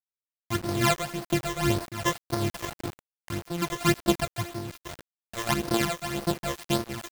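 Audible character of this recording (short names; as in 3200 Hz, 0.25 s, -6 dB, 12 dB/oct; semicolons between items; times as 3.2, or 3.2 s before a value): a buzz of ramps at a fixed pitch in blocks of 128 samples; phasing stages 12, 1.8 Hz, lowest notch 240–2700 Hz; a quantiser's noise floor 6-bit, dither none; noise-modulated level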